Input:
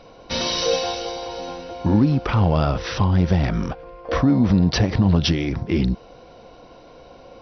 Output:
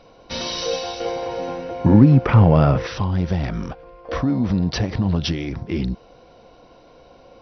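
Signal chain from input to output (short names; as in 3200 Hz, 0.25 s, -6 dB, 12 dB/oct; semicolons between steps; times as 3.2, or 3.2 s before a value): 1–2.87 graphic EQ 125/250/500/1000/2000/4000 Hz +11/+5/+7/+3/+8/-4 dB; gain -3.5 dB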